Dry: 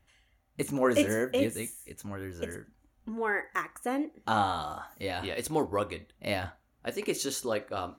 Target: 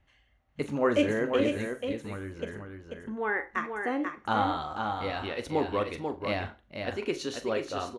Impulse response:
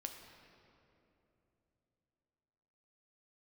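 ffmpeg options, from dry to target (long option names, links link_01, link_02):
-filter_complex "[0:a]lowpass=4100,aecho=1:1:489:0.531,asplit=2[link_01][link_02];[1:a]atrim=start_sample=2205,atrim=end_sample=3528,adelay=41[link_03];[link_02][link_03]afir=irnorm=-1:irlink=0,volume=-8.5dB[link_04];[link_01][link_04]amix=inputs=2:normalize=0"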